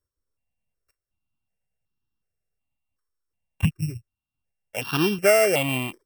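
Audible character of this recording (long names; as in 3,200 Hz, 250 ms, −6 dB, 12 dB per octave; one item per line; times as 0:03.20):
a buzz of ramps at a fixed pitch in blocks of 16 samples
notches that jump at a steady rate 2.7 Hz 730–2,100 Hz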